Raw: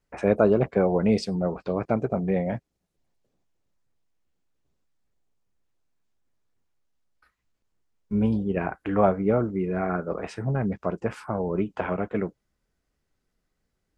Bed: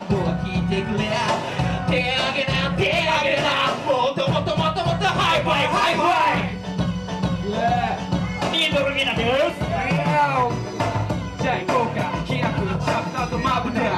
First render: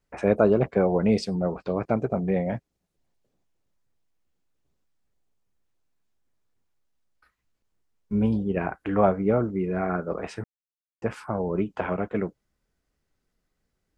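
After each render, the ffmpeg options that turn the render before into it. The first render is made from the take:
ffmpeg -i in.wav -filter_complex "[0:a]asplit=3[link_01][link_02][link_03];[link_01]atrim=end=10.44,asetpts=PTS-STARTPTS,afade=type=out:start_time=10.436:duration=0.004:curve=hsin[link_04];[link_02]atrim=start=10.44:end=11.02,asetpts=PTS-STARTPTS,volume=0[link_05];[link_03]atrim=start=11.02,asetpts=PTS-STARTPTS,afade=type=in:duration=0.004:curve=hsin[link_06];[link_04][link_05][link_06]concat=n=3:v=0:a=1" out.wav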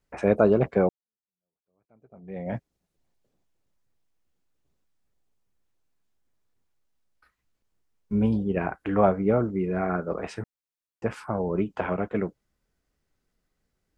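ffmpeg -i in.wav -filter_complex "[0:a]asplit=2[link_01][link_02];[link_01]atrim=end=0.89,asetpts=PTS-STARTPTS,afade=type=out:start_time=0.886:duration=0.004:curve=hsin[link_03];[link_02]atrim=start=0.89,asetpts=PTS-STARTPTS,afade=type=in:duration=1.66:curve=exp[link_04];[link_03][link_04]concat=n=2:v=0:a=1" out.wav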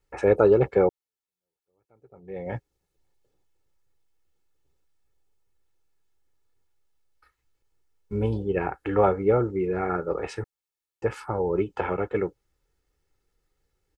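ffmpeg -i in.wav -af "aecho=1:1:2.3:0.65" out.wav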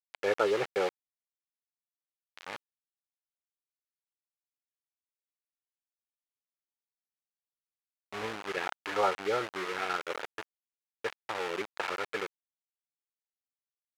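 ffmpeg -i in.wav -af "aeval=exprs='val(0)*gte(abs(val(0)),0.0473)':channel_layout=same,bandpass=frequency=2000:width_type=q:width=0.73:csg=0" out.wav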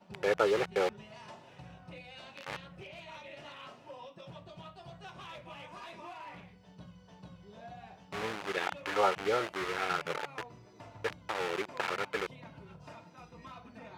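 ffmpeg -i in.wav -i bed.wav -filter_complex "[1:a]volume=-28.5dB[link_01];[0:a][link_01]amix=inputs=2:normalize=0" out.wav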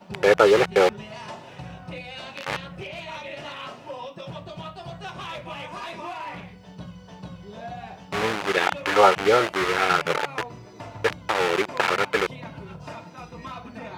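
ffmpeg -i in.wav -af "volume=12dB,alimiter=limit=-3dB:level=0:latency=1" out.wav

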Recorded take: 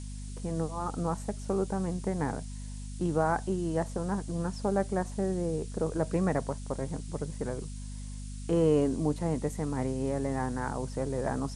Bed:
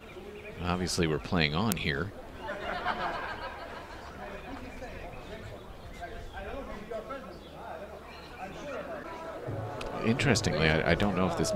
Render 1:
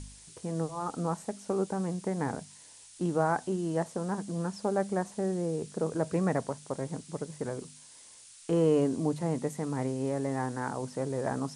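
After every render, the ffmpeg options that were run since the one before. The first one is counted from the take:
ffmpeg -i in.wav -af "bandreject=frequency=50:width_type=h:width=4,bandreject=frequency=100:width_type=h:width=4,bandreject=frequency=150:width_type=h:width=4,bandreject=frequency=200:width_type=h:width=4,bandreject=frequency=250:width_type=h:width=4" out.wav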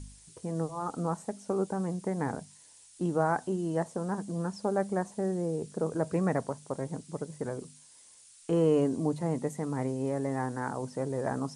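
ffmpeg -i in.wav -af "afftdn=noise_reduction=6:noise_floor=-53" out.wav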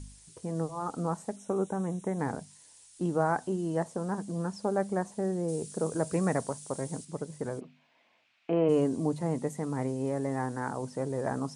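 ffmpeg -i in.wav -filter_complex "[0:a]asettb=1/sr,asplit=3[link_01][link_02][link_03];[link_01]atrim=end=1.364[link_04];[link_02]atrim=start=1.36:end=2.19,asetpts=PTS-STARTPTS,afade=type=in:duration=0.004:curve=qsin,afade=type=out:start_time=0.826:duration=0.004:curve=qsin,asuperstop=centerf=4700:order=20:qfactor=3.5[link_05];[link_03]atrim=start=2.186[link_06];[link_04][link_05]acrossfade=duration=0.004:curve1=hsin:curve2=qsin[link_07];[link_07][link_06]acrossfade=duration=0.004:curve1=qsin:curve2=hsin,asettb=1/sr,asplit=3[link_08][link_09][link_10];[link_08]atrim=end=5.484[link_11];[link_09]atrim=start=5.48:end=7.05,asetpts=PTS-STARTPTS,afade=type=in:duration=0.004:curve=qsin,afade=type=out:start_time=1.566:duration=0.004:curve=qsin,highshelf=frequency=4800:gain=12[link_12];[link_10]atrim=start=7.046[link_13];[link_11][link_12]acrossfade=duration=0.004:curve1=hsin:curve2=qsin[link_14];[link_14][link_13]acrossfade=duration=0.004:curve1=qsin:curve2=hsin,asplit=3[link_15][link_16][link_17];[link_15]afade=type=out:start_time=7.59:duration=0.02[link_18];[link_16]highpass=190,equalizer=frequency=240:width_type=q:width=4:gain=4,equalizer=frequency=430:width_type=q:width=4:gain=-4,equalizer=frequency=680:width_type=q:width=4:gain=10,equalizer=frequency=2400:width_type=q:width=4:gain=7,lowpass=frequency=3000:width=0.5412,lowpass=frequency=3000:width=1.3066,afade=type=in:start_time=7.59:duration=0.02,afade=type=out:start_time=8.68:duration=0.02[link_19];[link_17]afade=type=in:start_time=8.68:duration=0.02[link_20];[link_18][link_19][link_20]amix=inputs=3:normalize=0" out.wav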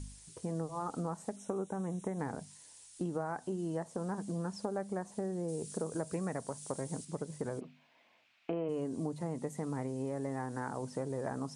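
ffmpeg -i in.wav -af "acompressor=threshold=-33dB:ratio=6" out.wav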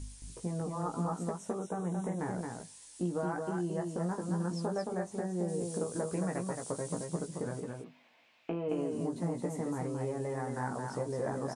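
ffmpeg -i in.wav -filter_complex "[0:a]asplit=2[link_01][link_02];[link_02]adelay=17,volume=-4.5dB[link_03];[link_01][link_03]amix=inputs=2:normalize=0,aecho=1:1:221:0.631" out.wav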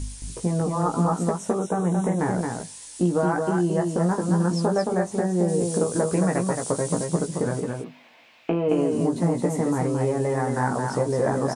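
ffmpeg -i in.wav -af "volume=12dB" out.wav

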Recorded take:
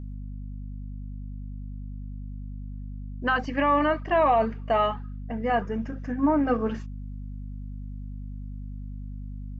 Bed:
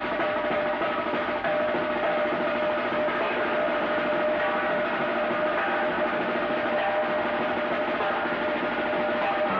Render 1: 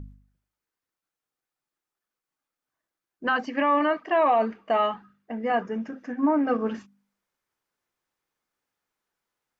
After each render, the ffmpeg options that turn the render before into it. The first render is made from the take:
ffmpeg -i in.wav -af "bandreject=frequency=50:width_type=h:width=4,bandreject=frequency=100:width_type=h:width=4,bandreject=frequency=150:width_type=h:width=4,bandreject=frequency=200:width_type=h:width=4,bandreject=frequency=250:width_type=h:width=4" out.wav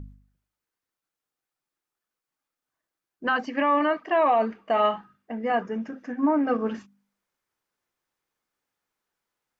ffmpeg -i in.wav -filter_complex "[0:a]asettb=1/sr,asplit=3[link_01][link_02][link_03];[link_01]atrim=end=4.734[link_04];[link_02]atrim=start=4.73:end=5.34,asetpts=PTS-STARTPTS,afade=type=in:duration=0.004:curve=qsin,afade=type=out:start_time=0.606:duration=0.004:curve=qsin,asplit=2[link_05][link_06];[link_06]adelay=43,volume=-6.5dB[link_07];[link_05][link_07]amix=inputs=2:normalize=0,atrim=end_sample=26901[link_08];[link_03]atrim=start=5.336[link_09];[link_04][link_08]acrossfade=duration=0.004:curve1=hsin:curve2=qsin[link_10];[link_10][link_09]acrossfade=duration=0.004:curve1=qsin:curve2=hsin" out.wav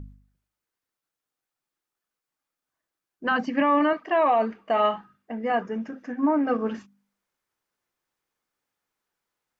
ffmpeg -i in.wav -filter_complex "[0:a]asettb=1/sr,asplit=3[link_01][link_02][link_03];[link_01]atrim=end=3.314[link_04];[link_02]atrim=start=3.31:end=3.93,asetpts=PTS-STARTPTS,afade=type=in:duration=0.004:curve=qsin,afade=type=out:start_time=0.616:duration=0.004:curve=qsin,equalizer=frequency=170:width=1.5:gain=13[link_05];[link_03]atrim=start=3.926[link_06];[link_04][link_05]acrossfade=duration=0.004:curve1=hsin:curve2=qsin[link_07];[link_07][link_06]acrossfade=duration=0.004:curve1=qsin:curve2=hsin" out.wav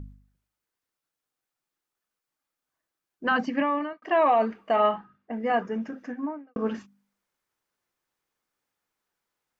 ffmpeg -i in.wav -filter_complex "[0:a]asettb=1/sr,asplit=3[link_01][link_02][link_03];[link_01]atrim=end=4.764[link_04];[link_02]atrim=start=4.76:end=5.33,asetpts=PTS-STARTPTS,afade=type=in:duration=0.004:curve=qsin,afade=type=out:start_time=0.566:duration=0.004:curve=qsin,aemphasis=mode=reproduction:type=75fm[link_05];[link_03]atrim=start=5.326[link_06];[link_04][link_05]acrossfade=duration=0.004:curve1=hsin:curve2=qsin[link_07];[link_07][link_06]acrossfade=duration=0.004:curve1=qsin:curve2=hsin,asplit=3[link_08][link_09][link_10];[link_08]atrim=end=4.02,asetpts=PTS-STARTPTS,afade=type=out:start_time=3.45:duration=0.57[link_11];[link_09]atrim=start=4.02:end=6.56,asetpts=PTS-STARTPTS,afade=type=in:duration=0.004:curve=hsin,afade=type=out:start_time=2.04:duration=0.5:curve=qua[link_12];[link_10]atrim=start=6.56,asetpts=PTS-STARTPTS,afade=type=in:duration=0.004:curve=hsin[link_13];[link_11][link_12][link_13]concat=n=3:v=0:a=1" out.wav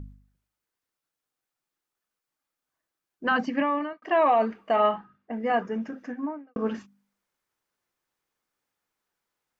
ffmpeg -i in.wav -af anull out.wav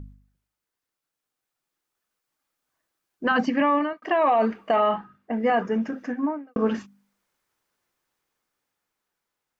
ffmpeg -i in.wav -af "dynaudnorm=framelen=330:gausssize=11:maxgain=6dB,alimiter=limit=-13dB:level=0:latency=1:release=31" out.wav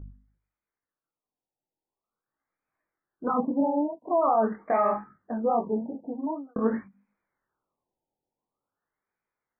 ffmpeg -i in.wav -af "flanger=delay=17.5:depth=6.8:speed=2.5,afftfilt=real='re*lt(b*sr/1024,930*pow(2600/930,0.5+0.5*sin(2*PI*0.46*pts/sr)))':imag='im*lt(b*sr/1024,930*pow(2600/930,0.5+0.5*sin(2*PI*0.46*pts/sr)))':win_size=1024:overlap=0.75" out.wav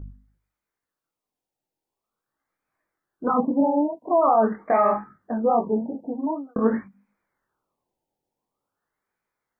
ffmpeg -i in.wav -af "volume=4.5dB" out.wav

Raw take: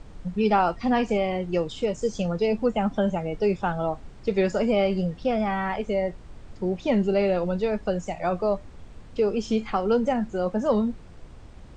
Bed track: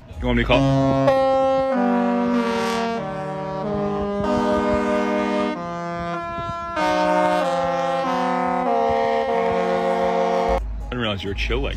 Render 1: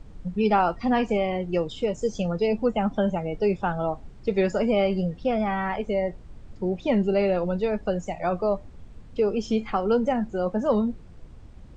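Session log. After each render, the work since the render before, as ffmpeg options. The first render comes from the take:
ffmpeg -i in.wav -af "afftdn=noise_reduction=6:noise_floor=-45" out.wav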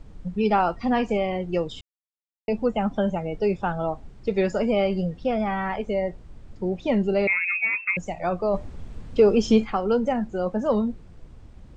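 ffmpeg -i in.wav -filter_complex "[0:a]asettb=1/sr,asplit=3[link_01][link_02][link_03];[link_01]atrim=end=7.274[link_04];[link_02]atrim=start=7.27:end=7.97,asetpts=PTS-STARTPTS,afade=type=in:duration=0.004:curve=qsin,afade=type=out:start_time=0.696:duration=0.004:curve=qsin,lowpass=frequency=2300:width_type=q:width=0.5098,lowpass=frequency=2300:width_type=q:width=0.6013,lowpass=frequency=2300:width_type=q:width=0.9,lowpass=frequency=2300:width_type=q:width=2.563,afreqshift=-2700[link_05];[link_03]atrim=start=7.966[link_06];[link_04][link_05]acrossfade=duration=0.004:curve1=hsin:curve2=qsin[link_07];[link_07][link_06]acrossfade=duration=0.004:curve1=qsin:curve2=hsin,asplit=3[link_08][link_09][link_10];[link_08]afade=type=out:start_time=8.53:duration=0.02[link_11];[link_09]acontrast=80,afade=type=in:start_time=8.53:duration=0.02,afade=type=out:start_time=9.64:duration=0.02[link_12];[link_10]afade=type=in:start_time=9.64:duration=0.02[link_13];[link_11][link_12][link_13]amix=inputs=3:normalize=0,asplit=3[link_14][link_15][link_16];[link_14]atrim=end=1.81,asetpts=PTS-STARTPTS,afade=type=out:start_time=1.806:duration=0.004:curve=hsin[link_17];[link_15]atrim=start=1.81:end=2.48,asetpts=PTS-STARTPTS,volume=0[link_18];[link_16]atrim=start=2.48,asetpts=PTS-STARTPTS,afade=type=in:duration=0.004:curve=hsin[link_19];[link_17][link_18][link_19]concat=n=3:v=0:a=1" out.wav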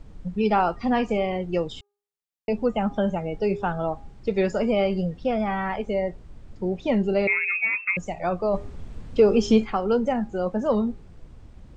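ffmpeg -i in.wav -af "bandreject=frequency=407:width_type=h:width=4,bandreject=frequency=814:width_type=h:width=4,bandreject=frequency=1221:width_type=h:width=4,bandreject=frequency=1628:width_type=h:width=4" out.wav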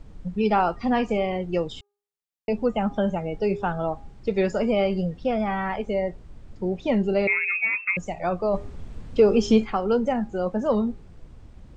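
ffmpeg -i in.wav -af anull out.wav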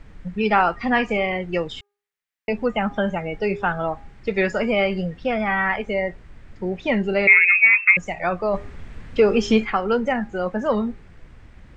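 ffmpeg -i in.wav -af "equalizer=frequency=1900:width=1.1:gain=12.5" out.wav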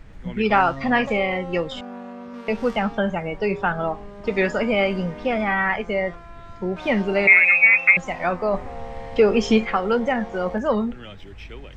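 ffmpeg -i in.wav -i bed.wav -filter_complex "[1:a]volume=-17dB[link_01];[0:a][link_01]amix=inputs=2:normalize=0" out.wav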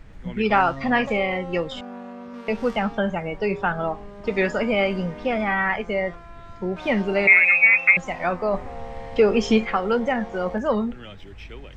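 ffmpeg -i in.wav -af "volume=-1dB" out.wav

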